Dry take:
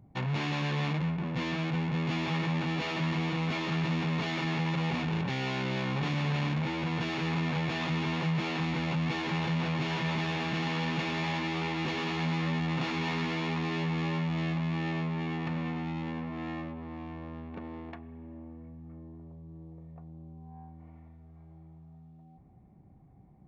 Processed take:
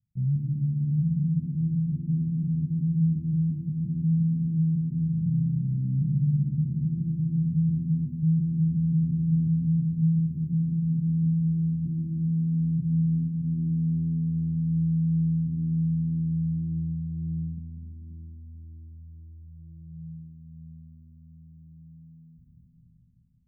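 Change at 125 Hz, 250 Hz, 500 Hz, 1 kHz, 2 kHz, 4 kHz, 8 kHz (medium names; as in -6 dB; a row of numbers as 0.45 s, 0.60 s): +8.5 dB, +6.0 dB, under -20 dB, under -40 dB, under -40 dB, under -40 dB, no reading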